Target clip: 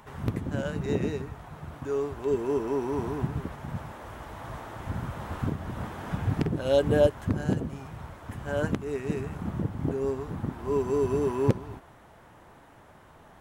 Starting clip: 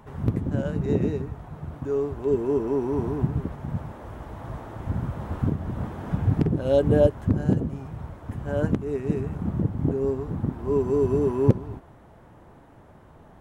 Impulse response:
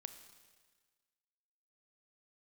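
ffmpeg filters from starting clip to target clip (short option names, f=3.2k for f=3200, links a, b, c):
-af "tiltshelf=f=820:g=-6"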